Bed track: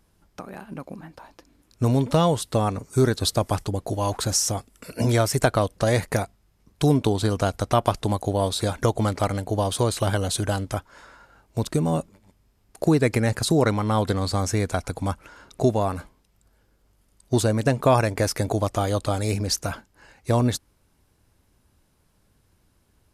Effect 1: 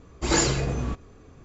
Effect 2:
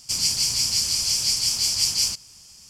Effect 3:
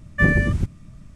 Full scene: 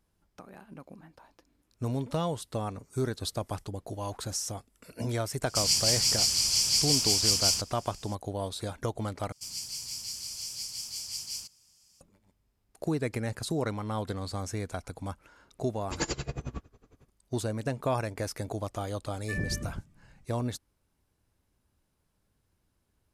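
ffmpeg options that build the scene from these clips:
ffmpeg -i bed.wav -i cue0.wav -i cue1.wav -i cue2.wav -filter_complex "[2:a]asplit=2[link_01][link_02];[0:a]volume=-11dB[link_03];[link_02]highshelf=frequency=9400:gain=8[link_04];[1:a]aeval=exprs='val(0)*pow(10,-25*(0.5-0.5*cos(2*PI*11*n/s))/20)':channel_layout=same[link_05];[3:a]acrossover=split=1100|4300[link_06][link_07][link_08];[link_06]adelay=50[link_09];[link_08]adelay=90[link_10];[link_09][link_07][link_10]amix=inputs=3:normalize=0[link_11];[link_03]asplit=2[link_12][link_13];[link_12]atrim=end=9.324[link_14];[link_04]atrim=end=2.69,asetpts=PTS-STARTPTS,volume=-17.5dB[link_15];[link_13]atrim=start=12.006[link_16];[link_01]atrim=end=2.69,asetpts=PTS-STARTPTS,volume=-3dB,afade=type=in:duration=0.004:curve=hsin,afade=type=out:start_time=2.686:duration=0.004:curve=hsin,adelay=5460[link_17];[link_05]atrim=end=1.44,asetpts=PTS-STARTPTS,volume=-4.5dB,afade=type=in:duration=0.004:curve=hsin,afade=type=out:start_time=1.436:duration=0.004:curve=hsin,adelay=15660[link_18];[link_11]atrim=end=1.15,asetpts=PTS-STARTPTS,volume=-16dB,afade=type=in:duration=0.004:curve=hsin,afade=type=out:start_time=1.146:duration=0.004:curve=hsin,adelay=19100[link_19];[link_14][link_15]acrossfade=duration=0.004:curve1=hsin:curve2=hsin[link_20];[link_20][link_16]acrossfade=duration=0.004:curve1=hsin:curve2=hsin[link_21];[link_21][link_17][link_18][link_19]amix=inputs=4:normalize=0" out.wav

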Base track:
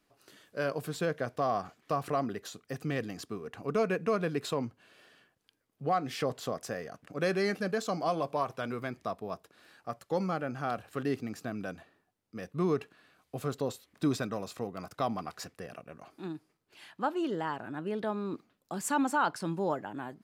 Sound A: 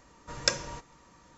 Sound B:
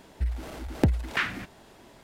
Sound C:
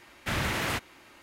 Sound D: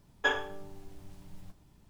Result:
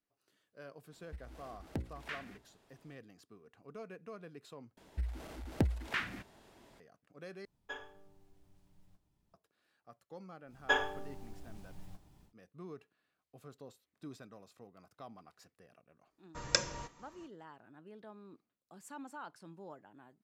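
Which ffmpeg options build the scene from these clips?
ffmpeg -i bed.wav -i cue0.wav -i cue1.wav -i cue2.wav -i cue3.wav -filter_complex "[2:a]asplit=2[link_01][link_02];[4:a]asplit=2[link_03][link_04];[0:a]volume=-19dB[link_05];[link_01]bandreject=frequency=60:width_type=h:width=6,bandreject=frequency=120:width_type=h:width=6,bandreject=frequency=180:width_type=h:width=6,bandreject=frequency=240:width_type=h:width=6,bandreject=frequency=300:width_type=h:width=6,bandreject=frequency=360:width_type=h:width=6,bandreject=frequency=420:width_type=h:width=6,bandreject=frequency=480:width_type=h:width=6,bandreject=frequency=540:width_type=h:width=6[link_06];[link_04]equalizer=frequency=770:width=4.9:gain=4.5[link_07];[1:a]agate=range=-28dB:threshold=-52dB:ratio=16:release=334:detection=rms[link_08];[link_05]asplit=3[link_09][link_10][link_11];[link_09]atrim=end=4.774[link_12];[link_02]atrim=end=2.03,asetpts=PTS-STARTPTS,volume=-8.5dB[link_13];[link_10]atrim=start=6.796:end=7.454[link_14];[link_03]atrim=end=1.89,asetpts=PTS-STARTPTS,volume=-17dB[link_15];[link_11]atrim=start=9.336[link_16];[link_06]atrim=end=2.03,asetpts=PTS-STARTPTS,volume=-16dB,afade=type=in:duration=0.004:curve=hsin,afade=type=out:start_time=2.026:duration=0.004:curve=hsin,adelay=920[link_17];[link_07]atrim=end=1.89,asetpts=PTS-STARTPTS,volume=-2dB,afade=type=in:duration=0.1,afade=type=out:start_time=1.79:duration=0.1,adelay=10450[link_18];[link_08]atrim=end=1.37,asetpts=PTS-STARTPTS,volume=-3.5dB,afade=type=in:duration=0.004:curve=hsin,afade=type=out:start_time=1.366:duration=0.004:curve=hsin,adelay=16070[link_19];[link_12][link_13]acrossfade=duration=0.004:curve1=hsin:curve2=hsin[link_20];[link_20][link_14]acrossfade=duration=0.004:curve1=hsin:curve2=hsin[link_21];[link_21][link_15]acrossfade=duration=0.004:curve1=hsin:curve2=hsin[link_22];[link_22][link_16]acrossfade=duration=0.004:curve1=hsin:curve2=hsin[link_23];[link_23][link_17][link_18][link_19]amix=inputs=4:normalize=0" out.wav

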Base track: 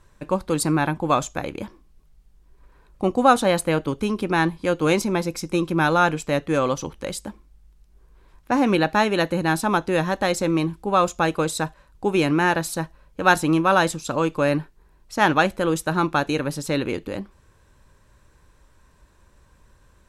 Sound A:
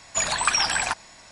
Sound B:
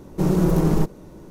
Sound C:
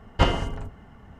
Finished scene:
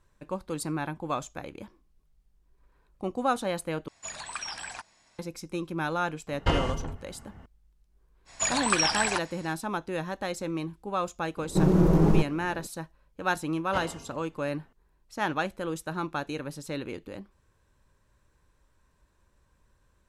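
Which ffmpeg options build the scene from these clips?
ffmpeg -i bed.wav -i cue0.wav -i cue1.wav -i cue2.wav -filter_complex "[1:a]asplit=2[link_01][link_02];[3:a]asplit=2[link_03][link_04];[0:a]volume=-11dB[link_05];[link_03]alimiter=limit=-11dB:level=0:latency=1:release=69[link_06];[2:a]lowpass=frequency=2800:poles=1[link_07];[link_04]highpass=frequency=190:poles=1[link_08];[link_05]asplit=2[link_09][link_10];[link_09]atrim=end=3.884[link_11];[link_01]atrim=end=1.31,asetpts=PTS-STARTPTS,volume=-15dB[link_12];[link_10]atrim=start=5.186[link_13];[link_06]atrim=end=1.19,asetpts=PTS-STARTPTS,volume=-2dB,afade=type=in:duration=0.004:curve=hsin,afade=type=out:start_time=1.186:duration=0.004:curve=hsin,adelay=6270[link_14];[link_02]atrim=end=1.31,asetpts=PTS-STARTPTS,volume=-3.5dB,afade=type=in:duration=0.05,afade=type=out:start_time=1.26:duration=0.05,adelay=8250[link_15];[link_07]atrim=end=1.3,asetpts=PTS-STARTPTS,volume=-2dB,afade=type=in:duration=0.004:curve=hsin,afade=type=out:start_time=1.296:duration=0.004:curve=hsin,adelay=11370[link_16];[link_08]atrim=end=1.19,asetpts=PTS-STARTPTS,volume=-12.5dB,afade=type=in:duration=0.004:curve=hsin,afade=type=out:start_time=1.186:duration=0.004:curve=hsin,adelay=13540[link_17];[link_11][link_12]acrossfade=duration=0.004:curve1=hsin:curve2=hsin[link_18];[link_18][link_13]acrossfade=duration=0.004:curve1=hsin:curve2=hsin[link_19];[link_19][link_14][link_15][link_16][link_17]amix=inputs=5:normalize=0" out.wav

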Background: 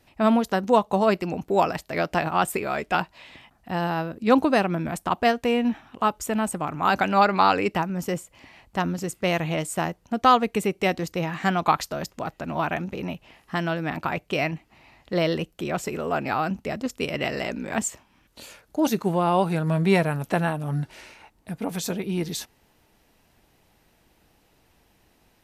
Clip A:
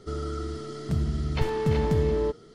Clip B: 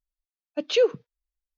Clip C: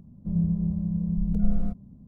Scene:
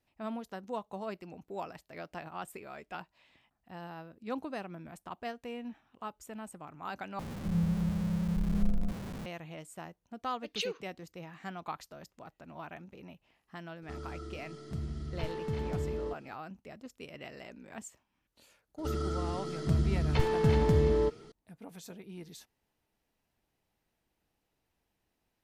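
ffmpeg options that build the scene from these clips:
ffmpeg -i bed.wav -i cue0.wav -i cue1.wav -i cue2.wav -filter_complex "[1:a]asplit=2[link_01][link_02];[0:a]volume=-19dB[link_03];[3:a]aeval=exprs='val(0)+0.5*0.0335*sgn(val(0))':channel_layout=same[link_04];[2:a]tiltshelf=frequency=1100:gain=-8.5[link_05];[link_03]asplit=2[link_06][link_07];[link_06]atrim=end=7.194[link_08];[link_04]atrim=end=2.07,asetpts=PTS-STARTPTS,volume=-6.5dB[link_09];[link_07]atrim=start=9.256[link_10];[link_05]atrim=end=1.57,asetpts=PTS-STARTPTS,volume=-13.5dB,afade=type=in:duration=0.004:curve=hsin,afade=type=out:start_time=1.566:duration=0.004:curve=hsin,adelay=434826S[link_11];[link_01]atrim=end=2.54,asetpts=PTS-STARTPTS,volume=-11dB,afade=type=in:duration=0.004:curve=hsin,afade=type=out:start_time=2.536:duration=0.004:curve=hsin,adelay=13820[link_12];[link_02]atrim=end=2.54,asetpts=PTS-STARTPTS,volume=-1.5dB,afade=type=in:duration=0.004:curve=hsin,afade=type=out:start_time=2.536:duration=0.004:curve=hsin,adelay=18780[link_13];[link_08][link_09]acrossfade=duration=0.004:curve1=hsin:curve2=hsin[link_14];[link_14][link_10]acrossfade=duration=0.004:curve1=hsin:curve2=hsin[link_15];[link_15][link_11][link_12][link_13]amix=inputs=4:normalize=0" out.wav

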